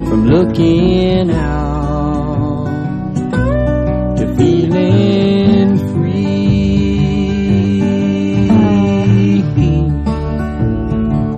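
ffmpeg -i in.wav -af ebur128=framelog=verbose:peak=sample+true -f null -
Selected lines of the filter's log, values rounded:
Integrated loudness:
  I:         -13.1 LUFS
  Threshold: -23.1 LUFS
Loudness range:
  LRA:         3.1 LU
  Threshold: -33.1 LUFS
  LRA low:   -15.3 LUFS
  LRA high:  -12.2 LUFS
Sample peak:
  Peak:       -2.3 dBFS
True peak:
  Peak:       -2.3 dBFS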